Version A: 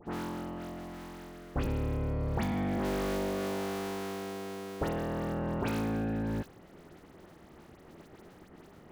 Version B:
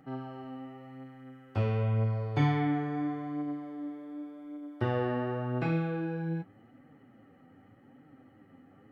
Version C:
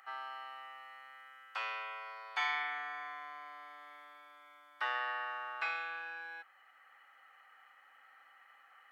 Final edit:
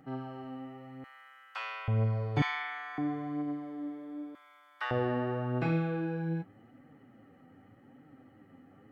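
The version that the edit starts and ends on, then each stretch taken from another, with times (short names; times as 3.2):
B
1.04–1.88 from C
2.42–2.98 from C
4.35–4.91 from C
not used: A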